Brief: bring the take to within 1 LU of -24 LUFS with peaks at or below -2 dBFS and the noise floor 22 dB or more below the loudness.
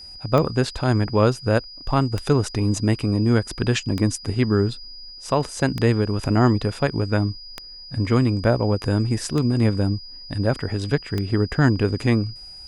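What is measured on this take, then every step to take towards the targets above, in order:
clicks found 7; steady tone 4.9 kHz; tone level -38 dBFS; loudness -22.0 LUFS; peak level -3.5 dBFS; loudness target -24.0 LUFS
-> de-click; band-stop 4.9 kHz, Q 30; trim -2 dB

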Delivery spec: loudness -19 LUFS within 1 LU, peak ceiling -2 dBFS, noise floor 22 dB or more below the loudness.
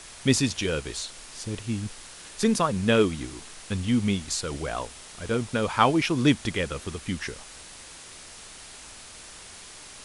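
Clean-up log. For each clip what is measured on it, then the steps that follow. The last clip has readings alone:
noise floor -45 dBFS; noise floor target -49 dBFS; loudness -26.5 LUFS; peak level -4.5 dBFS; loudness target -19.0 LUFS
-> noise print and reduce 6 dB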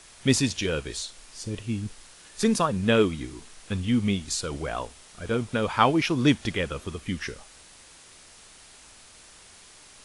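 noise floor -51 dBFS; loudness -26.5 LUFS; peak level -4.5 dBFS; loudness target -19.0 LUFS
-> trim +7.5 dB; peak limiter -2 dBFS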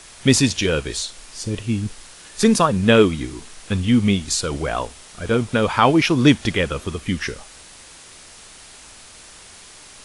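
loudness -19.5 LUFS; peak level -2.0 dBFS; noise floor -44 dBFS

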